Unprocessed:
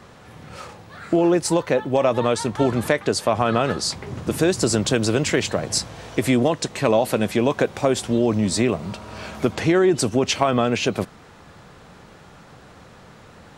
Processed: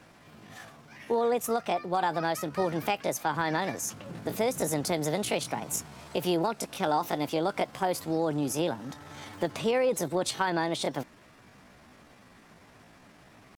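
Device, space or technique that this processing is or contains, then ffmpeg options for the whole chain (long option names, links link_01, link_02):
chipmunk voice: -af "asetrate=60591,aresample=44100,atempo=0.727827,volume=-9dB"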